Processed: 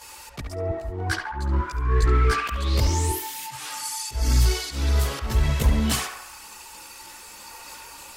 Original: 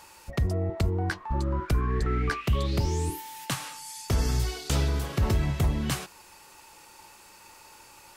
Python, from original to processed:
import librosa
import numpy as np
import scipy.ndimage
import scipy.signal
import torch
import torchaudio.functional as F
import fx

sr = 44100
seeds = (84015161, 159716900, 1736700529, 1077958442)

y = fx.high_shelf(x, sr, hz=2400.0, db=7.5)
y = fx.auto_swell(y, sr, attack_ms=273.0)
y = fx.cheby_harmonics(y, sr, harmonics=(5, 6), levels_db=(-17, -34), full_scale_db=-11.5)
y = fx.chorus_voices(y, sr, voices=6, hz=0.54, base_ms=16, depth_ms=2.5, mix_pct=65)
y = fx.echo_banded(y, sr, ms=70, feedback_pct=63, hz=1200.0, wet_db=-3.5)
y = F.gain(torch.from_numpy(y), 2.0).numpy()